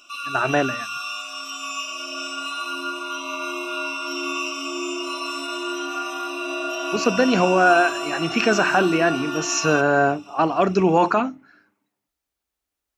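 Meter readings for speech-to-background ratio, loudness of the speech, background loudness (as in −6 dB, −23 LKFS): 7.5 dB, −20.0 LKFS, −27.5 LKFS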